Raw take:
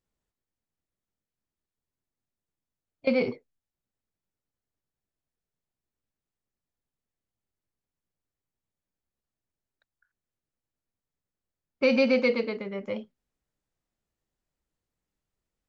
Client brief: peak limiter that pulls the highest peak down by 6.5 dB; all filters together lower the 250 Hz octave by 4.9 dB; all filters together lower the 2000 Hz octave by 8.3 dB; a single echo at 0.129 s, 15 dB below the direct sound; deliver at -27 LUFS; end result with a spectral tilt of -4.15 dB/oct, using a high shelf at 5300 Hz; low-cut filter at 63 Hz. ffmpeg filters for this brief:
-af "highpass=63,equalizer=f=250:t=o:g=-5,equalizer=f=2k:t=o:g=-9,highshelf=f=5.3k:g=-5,alimiter=limit=-21dB:level=0:latency=1,aecho=1:1:129:0.178,volume=5.5dB"

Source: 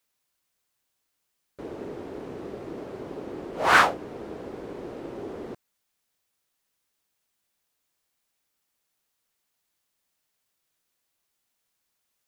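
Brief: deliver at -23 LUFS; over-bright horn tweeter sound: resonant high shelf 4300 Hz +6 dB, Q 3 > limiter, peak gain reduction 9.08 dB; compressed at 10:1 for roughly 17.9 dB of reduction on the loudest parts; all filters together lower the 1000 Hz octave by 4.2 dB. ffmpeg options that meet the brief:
-af "equalizer=f=1k:t=o:g=-5,acompressor=threshold=-33dB:ratio=10,highshelf=f=4.3k:t=q:w=3:g=6,volume=20dB,alimiter=limit=-13.5dB:level=0:latency=1"

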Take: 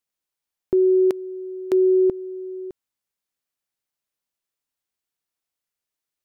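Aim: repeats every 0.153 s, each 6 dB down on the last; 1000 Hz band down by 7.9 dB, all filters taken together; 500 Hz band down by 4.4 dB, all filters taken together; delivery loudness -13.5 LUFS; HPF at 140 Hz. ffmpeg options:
-af "highpass=140,equalizer=f=500:t=o:g=-6,equalizer=f=1k:t=o:g=-8.5,aecho=1:1:153|306|459|612|765|918:0.501|0.251|0.125|0.0626|0.0313|0.0157,volume=8.5dB"

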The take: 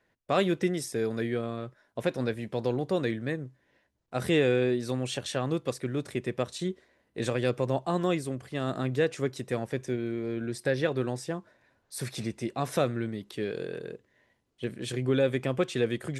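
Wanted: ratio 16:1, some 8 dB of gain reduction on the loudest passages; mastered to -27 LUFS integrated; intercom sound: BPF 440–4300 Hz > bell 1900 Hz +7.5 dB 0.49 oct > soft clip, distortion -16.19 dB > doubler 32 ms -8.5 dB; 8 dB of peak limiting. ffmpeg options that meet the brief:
-filter_complex "[0:a]acompressor=threshold=-28dB:ratio=16,alimiter=level_in=1.5dB:limit=-24dB:level=0:latency=1,volume=-1.5dB,highpass=440,lowpass=4.3k,equalizer=f=1.9k:t=o:w=0.49:g=7.5,asoftclip=threshold=-32.5dB,asplit=2[a][b];[b]adelay=32,volume=-8.5dB[c];[a][c]amix=inputs=2:normalize=0,volume=15dB"

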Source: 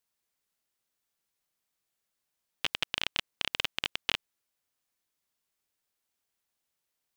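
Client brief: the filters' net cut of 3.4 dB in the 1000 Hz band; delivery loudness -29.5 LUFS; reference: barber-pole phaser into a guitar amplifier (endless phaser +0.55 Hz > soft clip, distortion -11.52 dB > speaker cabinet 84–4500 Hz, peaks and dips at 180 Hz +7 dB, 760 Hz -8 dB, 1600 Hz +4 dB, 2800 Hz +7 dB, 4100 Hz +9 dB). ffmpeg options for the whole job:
-filter_complex "[0:a]equalizer=f=1k:t=o:g=-3.5,asplit=2[a][b];[b]afreqshift=0.55[c];[a][c]amix=inputs=2:normalize=1,asoftclip=threshold=-21.5dB,highpass=84,equalizer=f=180:t=q:w=4:g=7,equalizer=f=760:t=q:w=4:g=-8,equalizer=f=1.6k:t=q:w=4:g=4,equalizer=f=2.8k:t=q:w=4:g=7,equalizer=f=4.1k:t=q:w=4:g=9,lowpass=f=4.5k:w=0.5412,lowpass=f=4.5k:w=1.3066,volume=5.5dB"

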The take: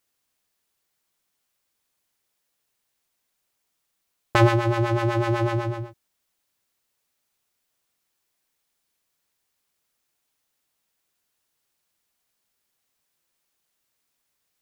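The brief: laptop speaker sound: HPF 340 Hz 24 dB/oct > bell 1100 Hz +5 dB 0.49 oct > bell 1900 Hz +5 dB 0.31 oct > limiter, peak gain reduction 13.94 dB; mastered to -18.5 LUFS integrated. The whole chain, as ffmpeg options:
-af "highpass=f=340:w=0.5412,highpass=f=340:w=1.3066,equalizer=f=1.1k:t=o:w=0.49:g=5,equalizer=f=1.9k:t=o:w=0.31:g=5,volume=10.5dB,alimiter=limit=-7.5dB:level=0:latency=1"

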